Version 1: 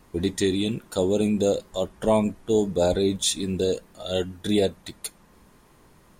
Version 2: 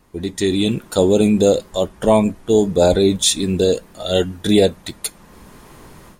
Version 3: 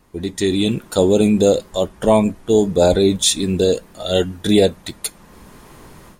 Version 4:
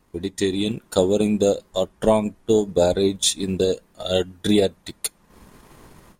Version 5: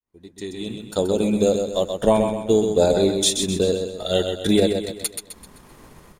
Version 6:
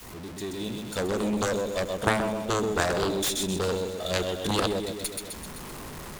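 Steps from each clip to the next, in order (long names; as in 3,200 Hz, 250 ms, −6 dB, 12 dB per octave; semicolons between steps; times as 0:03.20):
automatic gain control gain up to 15 dB; level −1 dB
no processing that can be heard
transient designer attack +5 dB, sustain −7 dB; level −6 dB
fade in at the beginning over 1.54 s; on a send: repeating echo 129 ms, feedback 43%, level −6 dB
converter with a step at zero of −29 dBFS; harmonic generator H 3 −6 dB, 6 −26 dB, 8 −23 dB, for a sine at −3.5 dBFS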